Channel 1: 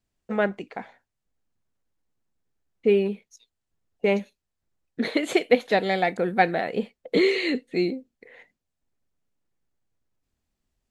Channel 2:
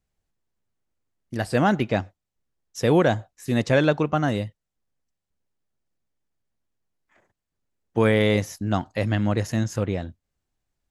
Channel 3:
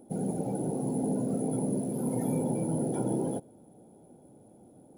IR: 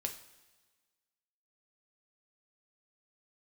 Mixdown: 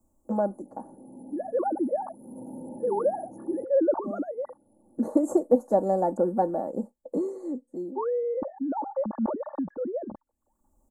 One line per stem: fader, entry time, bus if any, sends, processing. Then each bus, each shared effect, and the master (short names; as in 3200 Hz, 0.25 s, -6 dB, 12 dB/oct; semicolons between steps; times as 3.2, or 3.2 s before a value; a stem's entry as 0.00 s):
+2.0 dB, 0.00 s, no send, auto duck -19 dB, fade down 1.80 s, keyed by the second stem
-7.5 dB, 0.00 s, no send, sine-wave speech; gate with hold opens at -53 dBFS; sustainer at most 73 dB/s
2.12 s -23 dB -> 2.37 s -15.5 dB, 0.25 s, no send, LPF 11000 Hz; limiter -24 dBFS, peak gain reduction 6 dB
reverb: off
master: Chebyshev band-stop 980–7500 Hz, order 3; comb 3.5 ms, depth 69%; three-band squash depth 40%